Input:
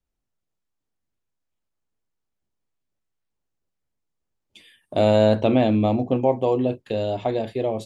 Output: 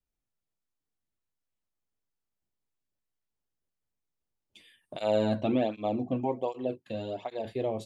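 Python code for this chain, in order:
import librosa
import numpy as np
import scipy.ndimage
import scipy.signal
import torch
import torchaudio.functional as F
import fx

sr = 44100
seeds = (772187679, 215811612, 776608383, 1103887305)

y = fx.flanger_cancel(x, sr, hz=1.3, depth_ms=2.5, at=(4.95, 7.44), fade=0.02)
y = y * 10.0 ** (-6.5 / 20.0)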